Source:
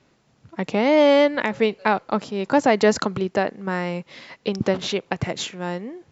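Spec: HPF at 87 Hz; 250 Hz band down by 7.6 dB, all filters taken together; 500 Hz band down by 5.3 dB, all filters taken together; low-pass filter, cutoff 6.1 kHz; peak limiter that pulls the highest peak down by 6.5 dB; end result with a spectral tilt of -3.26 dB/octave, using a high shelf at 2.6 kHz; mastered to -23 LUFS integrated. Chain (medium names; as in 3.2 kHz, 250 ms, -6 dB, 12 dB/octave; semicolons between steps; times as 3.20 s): high-pass 87 Hz; low-pass 6.1 kHz; peaking EQ 250 Hz -8.5 dB; peaking EQ 500 Hz -5 dB; treble shelf 2.6 kHz +7 dB; trim +3 dB; peak limiter -7.5 dBFS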